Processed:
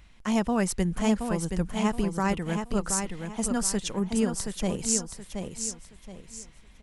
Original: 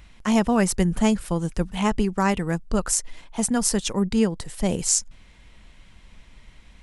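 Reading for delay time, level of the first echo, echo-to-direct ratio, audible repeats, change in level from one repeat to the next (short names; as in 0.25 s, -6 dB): 0.724 s, -6.0 dB, -5.5 dB, 3, -10.0 dB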